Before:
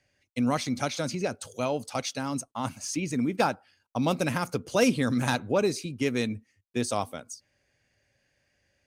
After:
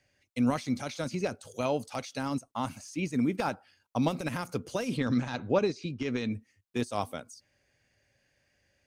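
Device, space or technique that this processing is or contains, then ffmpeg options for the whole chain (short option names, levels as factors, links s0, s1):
de-esser from a sidechain: -filter_complex "[0:a]asplit=2[s0][s1];[s1]highpass=f=6000:w=0.5412,highpass=f=6000:w=1.3066,apad=whole_len=390941[s2];[s0][s2]sidechaincompress=threshold=0.00447:ratio=4:attack=0.58:release=44,asettb=1/sr,asplit=3[s3][s4][s5];[s3]atrim=end=4.974[s6];[s4]atrim=start=4.97:end=6.32,asetpts=PTS-STARTPTS,afade=t=in:d=0.004:c=qsin,afade=t=out:st=1.346:d=0.004:c=qsin,lowpass=f=6000:w=0.5412,lowpass=f=6000:w=1.3066[s7];[s5]atrim=start=6.316[s8];[s6][s7]acrossfade=d=0.004:c1=hsin:c2=qsin[s9];[s9][s8]acrossfade=d=0.004:c1=qsin:c2=hsin"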